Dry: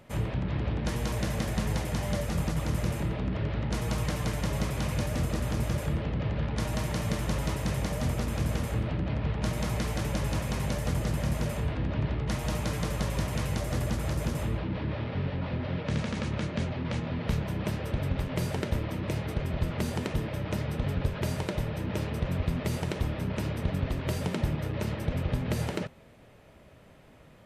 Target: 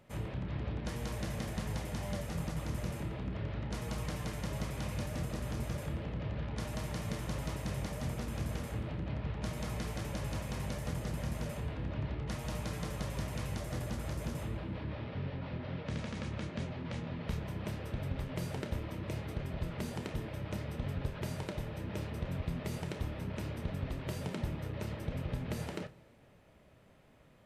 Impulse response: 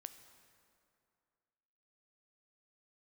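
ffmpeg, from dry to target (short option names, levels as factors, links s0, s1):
-filter_complex "[0:a]asplit=2[s0][s1];[1:a]atrim=start_sample=2205,adelay=30[s2];[s1][s2]afir=irnorm=-1:irlink=0,volume=0.531[s3];[s0][s3]amix=inputs=2:normalize=0,volume=0.398"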